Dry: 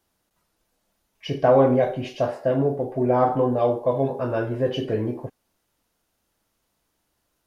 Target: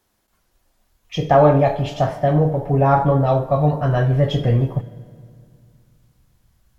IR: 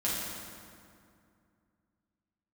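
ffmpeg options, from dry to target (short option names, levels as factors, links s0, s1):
-filter_complex "[0:a]asubboost=boost=10:cutoff=100,asetrate=48510,aresample=44100,asplit=2[s0][s1];[1:a]atrim=start_sample=2205[s2];[s1][s2]afir=irnorm=-1:irlink=0,volume=0.0891[s3];[s0][s3]amix=inputs=2:normalize=0,volume=1.58"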